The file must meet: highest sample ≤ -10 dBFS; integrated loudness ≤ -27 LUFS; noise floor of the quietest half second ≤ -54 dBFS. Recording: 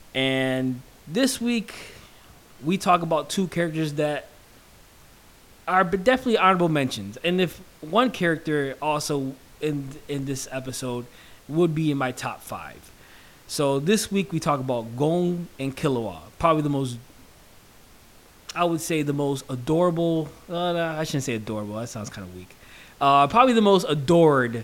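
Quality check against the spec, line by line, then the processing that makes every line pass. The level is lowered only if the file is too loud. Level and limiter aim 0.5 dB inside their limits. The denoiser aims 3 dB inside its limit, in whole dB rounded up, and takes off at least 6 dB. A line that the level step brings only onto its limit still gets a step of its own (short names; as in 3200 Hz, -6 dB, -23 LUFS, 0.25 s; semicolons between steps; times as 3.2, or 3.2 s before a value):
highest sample -3.0 dBFS: fail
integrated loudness -23.5 LUFS: fail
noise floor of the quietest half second -51 dBFS: fail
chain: gain -4 dB; limiter -10.5 dBFS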